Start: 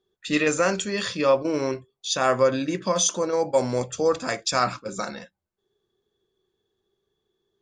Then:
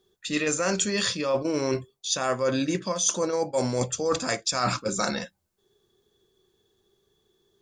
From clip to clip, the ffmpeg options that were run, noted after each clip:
ffmpeg -i in.wav -af "bass=frequency=250:gain=2,treble=frequency=4000:gain=7,areverse,acompressor=threshold=-28dB:ratio=12,areverse,volume=6dB" out.wav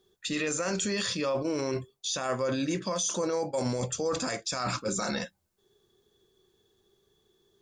ffmpeg -i in.wav -af "alimiter=limit=-21.5dB:level=0:latency=1:release=19" out.wav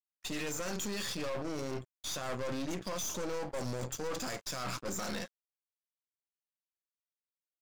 ffmpeg -i in.wav -af "aeval=exprs='sgn(val(0))*max(abs(val(0))-0.00355,0)':channel_layout=same,aeval=exprs='(tanh(63.1*val(0)+0.8)-tanh(0.8))/63.1':channel_layout=same,volume=1.5dB" out.wav

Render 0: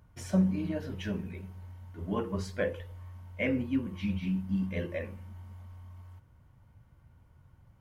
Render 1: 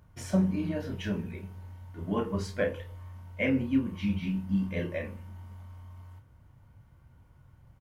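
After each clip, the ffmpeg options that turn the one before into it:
ffmpeg -i in.wav -filter_complex "[0:a]asplit=2[link_01][link_02];[link_02]adelay=30,volume=-7dB[link_03];[link_01][link_03]amix=inputs=2:normalize=0,volume=1.5dB" out.wav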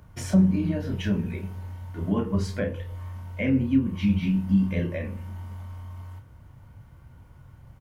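ffmpeg -i in.wav -filter_complex "[0:a]acrossover=split=270[link_01][link_02];[link_02]acompressor=threshold=-45dB:ratio=2[link_03];[link_01][link_03]amix=inputs=2:normalize=0,volume=8dB" out.wav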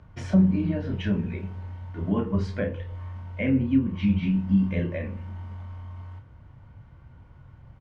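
ffmpeg -i in.wav -af "lowpass=3600" out.wav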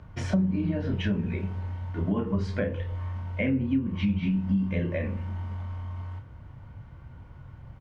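ffmpeg -i in.wav -af "acompressor=threshold=-28dB:ratio=3,volume=3.5dB" out.wav

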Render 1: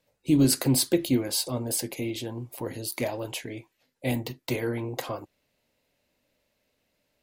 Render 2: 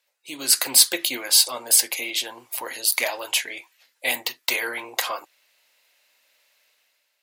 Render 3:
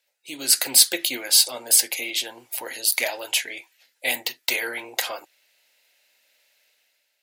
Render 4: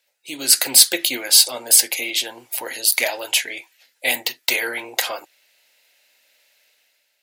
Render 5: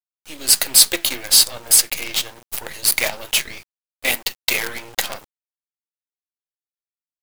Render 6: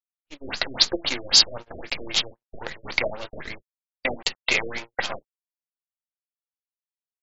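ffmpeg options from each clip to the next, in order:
ffmpeg -i in.wav -af "dynaudnorm=framelen=120:gausssize=9:maxgain=9.5dB,highpass=1200,volume=4dB" out.wav
ffmpeg -i in.wav -af "equalizer=frequency=1100:width_type=o:width=0.33:gain=-11" out.wav
ffmpeg -i in.wav -af "apsyclip=5dB,volume=-1dB" out.wav
ffmpeg -i in.wav -af "acrusher=bits=4:dc=4:mix=0:aa=0.000001" out.wav
ffmpeg -i in.wav -af "aresample=32000,aresample=44100,agate=range=-46dB:threshold=-32dB:ratio=16:detection=peak,afftfilt=real='re*lt(b*sr/1024,620*pow(7700/620,0.5+0.5*sin(2*PI*3.8*pts/sr)))':imag='im*lt(b*sr/1024,620*pow(7700/620,0.5+0.5*sin(2*PI*3.8*pts/sr)))':win_size=1024:overlap=0.75" out.wav

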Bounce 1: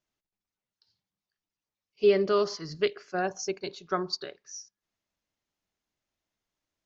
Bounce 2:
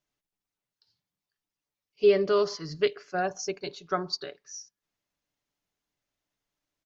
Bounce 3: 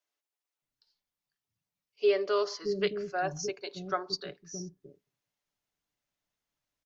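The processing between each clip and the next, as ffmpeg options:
ffmpeg -i in.wav -af "aecho=1:1:6.9:0.31" out.wav
ffmpeg -i in.wav -filter_complex "[0:a]acrossover=split=330[link_01][link_02];[link_01]adelay=620[link_03];[link_03][link_02]amix=inputs=2:normalize=0,volume=-2dB" out.wav

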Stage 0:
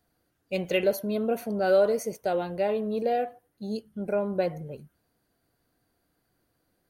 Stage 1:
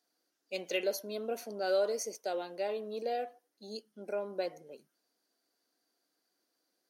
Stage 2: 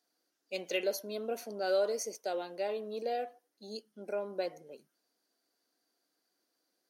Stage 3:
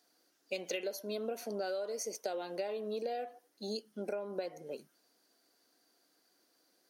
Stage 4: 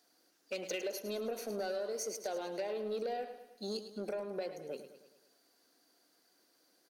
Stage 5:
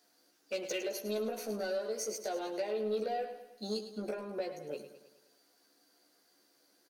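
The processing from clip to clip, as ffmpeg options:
ffmpeg -i in.wav -af "highpass=frequency=260:width=0.5412,highpass=frequency=260:width=1.3066,equalizer=frequency=5500:width_type=o:width=1.1:gain=13,volume=-8.5dB" out.wav
ffmpeg -i in.wav -af anull out.wav
ffmpeg -i in.wav -af "acompressor=threshold=-42dB:ratio=16,volume=8dB" out.wav
ffmpeg -i in.wav -af "asoftclip=type=tanh:threshold=-31dB,aecho=1:1:106|212|318|424|530|636:0.282|0.147|0.0762|0.0396|0.0206|0.0107,volume=1dB" out.wav
ffmpeg -i in.wav -filter_complex "[0:a]asplit=2[link_01][link_02];[link_02]adelay=14,volume=-3dB[link_03];[link_01][link_03]amix=inputs=2:normalize=0" out.wav

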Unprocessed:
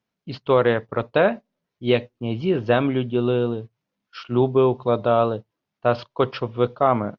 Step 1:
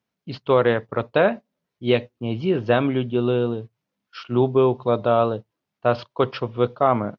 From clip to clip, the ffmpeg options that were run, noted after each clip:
ffmpeg -i in.wav -af "highpass=40" out.wav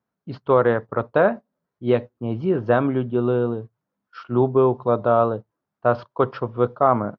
ffmpeg -i in.wav -af "highshelf=frequency=1900:width_type=q:width=1.5:gain=-9" out.wav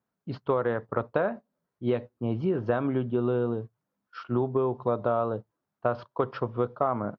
ffmpeg -i in.wav -af "acompressor=threshold=-20dB:ratio=6,volume=-2dB" out.wav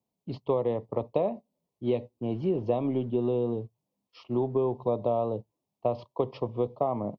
ffmpeg -i in.wav -filter_complex "[0:a]acrossover=split=180[link_01][link_02];[link_01]asoftclip=type=hard:threshold=-37.5dB[link_03];[link_02]asuperstop=centerf=1500:order=4:qfactor=1.1[link_04];[link_03][link_04]amix=inputs=2:normalize=0" out.wav

